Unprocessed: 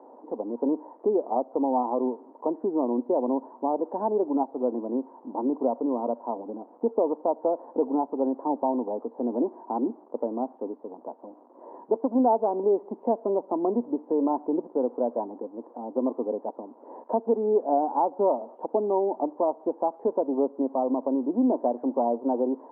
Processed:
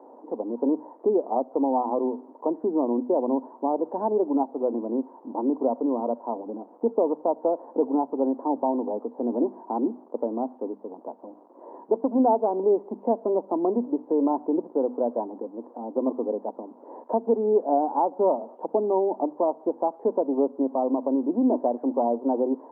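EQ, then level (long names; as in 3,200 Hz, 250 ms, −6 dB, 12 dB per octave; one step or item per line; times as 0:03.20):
high-pass filter 150 Hz
low-shelf EQ 370 Hz +4 dB
mains-hum notches 50/100/150/200/250 Hz
0.0 dB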